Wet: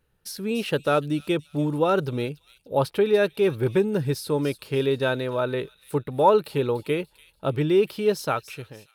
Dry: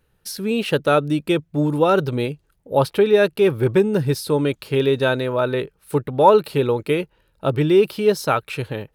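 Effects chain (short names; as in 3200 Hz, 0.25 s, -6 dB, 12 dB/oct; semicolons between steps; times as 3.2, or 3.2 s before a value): ending faded out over 0.71 s; thin delay 0.291 s, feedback 37%, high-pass 4400 Hz, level -9.5 dB; gain -5 dB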